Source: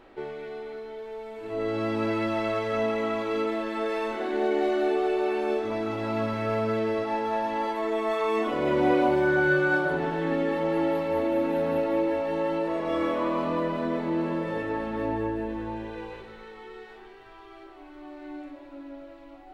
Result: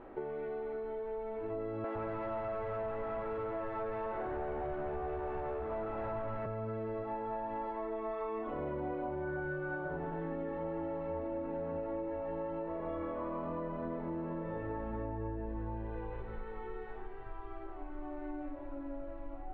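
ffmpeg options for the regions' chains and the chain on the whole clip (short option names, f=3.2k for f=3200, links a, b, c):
-filter_complex "[0:a]asettb=1/sr,asplit=3[a][b][c];[a]atrim=end=1.844[d];[b]atrim=start=1.84:end=6.46,asetpts=PTS-STARTPTS,afade=t=in:d=0.004:c=qsin,afade=t=out:st=4.616:d=0.004:c=qsin,asplit=2[e][f];[f]highpass=f=720:p=1,volume=23dB,asoftclip=type=tanh:threshold=-15.5dB[g];[e][g]amix=inputs=2:normalize=0,lowpass=f=1.2k:p=1,volume=-6dB,acrossover=split=250[h][i];[h]adelay=110[j];[j][i]amix=inputs=2:normalize=0,atrim=end_sample=203742[k];[c]atrim=start=6.456[l];[d][k]acrossfade=d=0.004:c1=hsin:c2=qsin[m];[m][l]acrossfade=d=0.004:c1=qsin:c2=hsin,lowpass=1.3k,asubboost=boost=4:cutoff=110,acompressor=threshold=-39dB:ratio=6,volume=2.5dB"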